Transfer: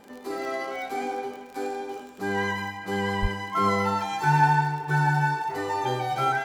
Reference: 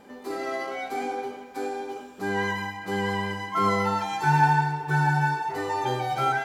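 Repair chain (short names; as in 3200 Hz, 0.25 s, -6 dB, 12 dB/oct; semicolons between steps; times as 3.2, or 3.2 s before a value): de-click; 3.21–3.33 HPF 140 Hz 24 dB/oct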